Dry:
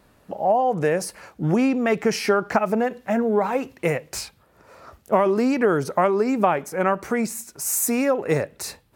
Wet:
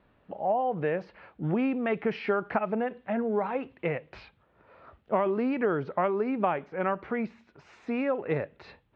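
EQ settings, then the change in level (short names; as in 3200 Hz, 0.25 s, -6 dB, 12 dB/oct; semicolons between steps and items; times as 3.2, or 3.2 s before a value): steep low-pass 3500 Hz 36 dB/oct; -7.5 dB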